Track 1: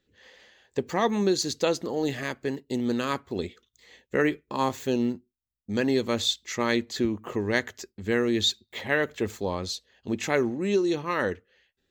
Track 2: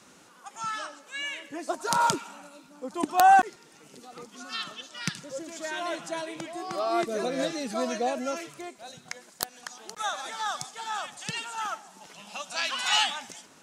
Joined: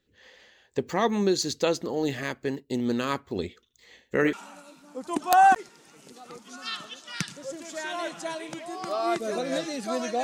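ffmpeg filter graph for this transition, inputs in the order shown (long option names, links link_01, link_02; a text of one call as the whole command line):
ffmpeg -i cue0.wav -i cue1.wav -filter_complex "[0:a]asettb=1/sr,asplit=3[link_01][link_02][link_03];[link_01]atrim=end=3.614[link_04];[link_02]atrim=start=3.61:end=4.33,asetpts=PTS-STARTPTS,afade=type=in:duration=0.004:curve=qsin,afade=type=out:start_time=0.716:duration=0.004:curve=qsin,aecho=1:1:78:0.251,atrim=end_sample=31752[link_05];[link_03]atrim=start=4.326[link_06];[link_04][link_05]acrossfade=duration=0.004:curve1=hsin:curve2=qsin[link_07];[link_07][link_06]acrossfade=duration=0.004:curve1=qsin:curve2=hsin,apad=whole_dur=10.23,atrim=end=10.23,atrim=end=4.332[link_08];[1:a]atrim=start=2.198:end=8.1[link_09];[link_08][link_09]acrossfade=duration=0.004:curve1=hsin:curve2=hsin" out.wav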